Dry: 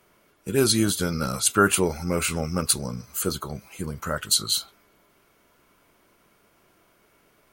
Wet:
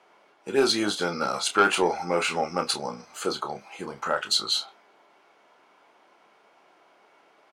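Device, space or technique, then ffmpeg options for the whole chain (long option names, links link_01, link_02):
intercom: -filter_complex "[0:a]highpass=360,lowpass=4600,equalizer=frequency=810:width_type=o:width=0.4:gain=10,asoftclip=type=tanh:threshold=-11.5dB,asplit=2[link_01][link_02];[link_02]adelay=29,volume=-8.5dB[link_03];[link_01][link_03]amix=inputs=2:normalize=0,volume=2dB"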